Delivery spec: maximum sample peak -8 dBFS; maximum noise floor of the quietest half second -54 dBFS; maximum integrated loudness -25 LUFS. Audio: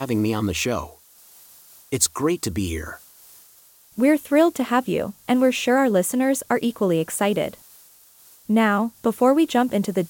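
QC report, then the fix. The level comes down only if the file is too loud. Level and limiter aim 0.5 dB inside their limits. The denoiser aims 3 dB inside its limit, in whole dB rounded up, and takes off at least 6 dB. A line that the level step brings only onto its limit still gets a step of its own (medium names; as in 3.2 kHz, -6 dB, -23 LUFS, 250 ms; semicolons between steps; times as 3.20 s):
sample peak -5.5 dBFS: fail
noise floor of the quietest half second -52 dBFS: fail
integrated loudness -21.5 LUFS: fail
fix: trim -4 dB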